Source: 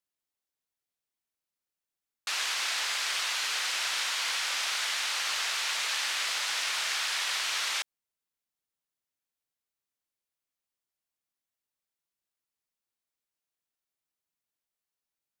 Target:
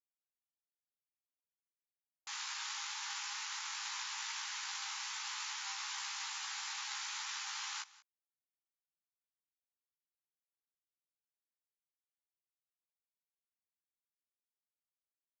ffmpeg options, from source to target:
-filter_complex "[0:a]aeval=exprs='abs(val(0))':c=same,afftfilt=real='re*between(b*sr/4096,780,7400)':imag='im*between(b*sr/4096,780,7400)':win_size=4096:overlap=0.75,anlmdn=0.00398,flanger=delay=15:depth=3.5:speed=0.16,asplit=2[a][b];[b]aecho=0:1:184:0.1[c];[a][c]amix=inputs=2:normalize=0,volume=-2dB"

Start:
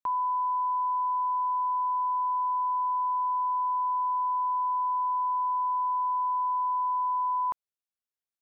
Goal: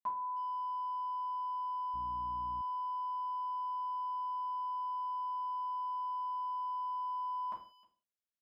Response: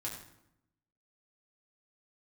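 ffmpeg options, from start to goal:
-filter_complex "[0:a]asplit=2[a][b];[b]adelay=310,highpass=300,lowpass=3.4k,asoftclip=type=hard:threshold=-33.5dB,volume=-20dB[c];[a][c]amix=inputs=2:normalize=0[d];[1:a]atrim=start_sample=2205,afade=t=out:st=0.45:d=0.01,atrim=end_sample=20286,asetrate=88200,aresample=44100[e];[d][e]afir=irnorm=-1:irlink=0,asettb=1/sr,asplit=3[f][g][h];[f]atrim=end=1.944[i];[g]atrim=start=1.94:end=2.62,asetpts=PTS-STARTPTS,afade=t=in:d=0.004:c=qsin,afade=t=out:st=0.676:d=0.004:c=qsin,aeval=exprs='val(0)+0.00316*(sin(2*PI*60*n/s)+sin(2*PI*2*60*n/s)/2+sin(2*PI*3*60*n/s)/3+sin(2*PI*4*60*n/s)/4+sin(2*PI*5*60*n/s)/5)':c=same[j];[h]atrim=start=2.616[k];[i][j]acrossfade=d=0.004:c1=hsin:c2=qsin[l];[l][k]acrossfade=d=0.004:c1=qsin:c2=hsin"

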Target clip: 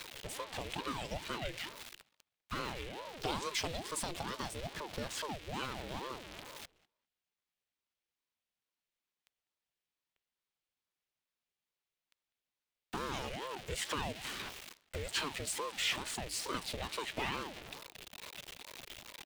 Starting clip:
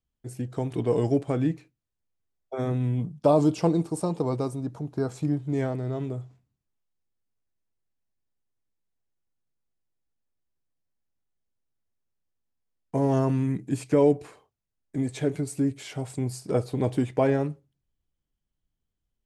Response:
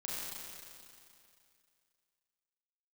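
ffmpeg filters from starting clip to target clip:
-filter_complex "[0:a]aeval=exprs='val(0)+0.5*0.0158*sgn(val(0))':c=same,acrossover=split=1800[a][b];[a]acompressor=threshold=-33dB:ratio=6[c];[c][b]amix=inputs=2:normalize=0,highpass=f=170:w=0.5412,highpass=f=170:w=1.3066,equalizer=f=2.9k:w=0.82:g=11.5,asplit=2[d][e];[e]adelay=199,lowpass=f=3.4k:p=1,volume=-22dB,asplit=2[f][g];[g]adelay=199,lowpass=f=3.4k:p=1,volume=0.15[h];[f][h]amix=inputs=2:normalize=0[i];[d][i]amix=inputs=2:normalize=0,aeval=exprs='val(0)*sin(2*PI*480*n/s+480*0.65/2.3*sin(2*PI*2.3*n/s))':c=same,volume=-2dB"

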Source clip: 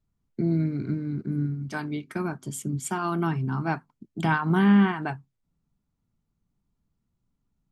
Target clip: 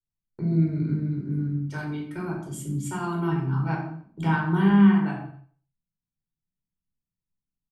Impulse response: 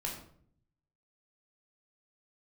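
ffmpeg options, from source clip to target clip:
-filter_complex "[0:a]agate=range=-17dB:threshold=-41dB:ratio=16:detection=peak,aecho=1:1:90|180|270:0.15|0.0554|0.0205[a];[1:a]atrim=start_sample=2205,afade=t=out:st=0.37:d=0.01,atrim=end_sample=16758[b];[a][b]afir=irnorm=-1:irlink=0,volume=-4dB"

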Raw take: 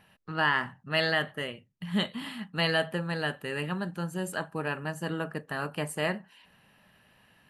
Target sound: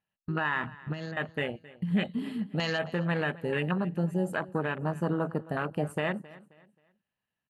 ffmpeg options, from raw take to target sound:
-filter_complex "[0:a]afwtdn=0.02,agate=range=-20dB:threshold=-55dB:ratio=16:detection=peak,asplit=2[a][b];[b]acompressor=threshold=-41dB:ratio=6,volume=1.5dB[c];[a][c]amix=inputs=2:normalize=0,alimiter=limit=-21.5dB:level=0:latency=1:release=103,asettb=1/sr,asplit=3[d][e][f];[d]atrim=end=0.644[g];[e]atrim=start=0.64:end=1.17,asetpts=PTS-STARTPTS,afade=t=in:d=0.004:c=qsin,afade=t=out:st=0.526:d=0.004:c=qsin,acrossover=split=370[h][i];[i]acompressor=threshold=-46dB:ratio=6[j];[h][j]amix=inputs=2:normalize=0[k];[f]atrim=start=1.166[l];[g][k]acrossfade=d=0.004:c1=hsin:c2=qsin[m];[m][l]acrossfade=d=0.004:c1=qsin:c2=hsin,asplit=2[n][o];[o]aecho=0:1:266|532|798:0.1|0.033|0.0109[p];[n][p]amix=inputs=2:normalize=0,volume=2.5dB"

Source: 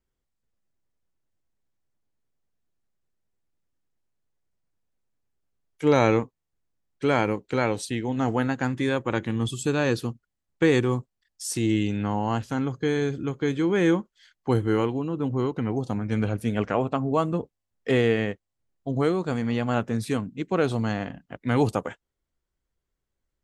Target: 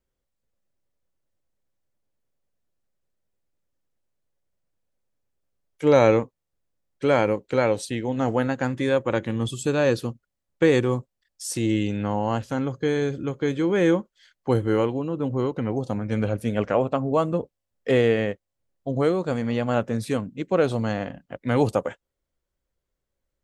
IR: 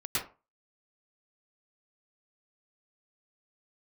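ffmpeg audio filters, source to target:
-af "equalizer=f=550:t=o:w=0.35:g=8"

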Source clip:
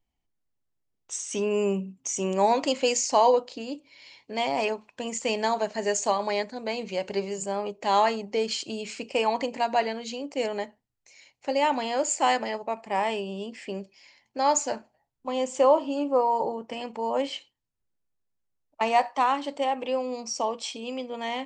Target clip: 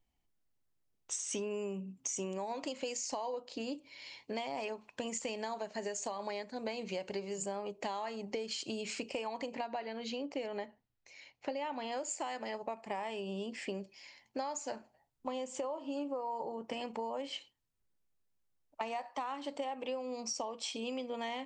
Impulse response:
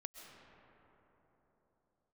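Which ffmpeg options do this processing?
-filter_complex "[0:a]alimiter=limit=-17.5dB:level=0:latency=1:release=309,acompressor=threshold=-35dB:ratio=10,asettb=1/sr,asplit=3[a][b][c];[a]atrim=end=9.544[d];[b]atrim=start=9.54:end=11.92,asetpts=PTS-STARTPTS,afade=t=in:d=0.004:c=qsin,afade=t=out:st=2.376:d=0.004:c=qsin,lowpass=4.4k[e];[c]atrim=start=11.916[f];[d][e]acrossfade=d=0.004:c1=hsin:c2=qsin[g];[g][f]acrossfade=d=0.004:c1=qsin:c2=hsin"

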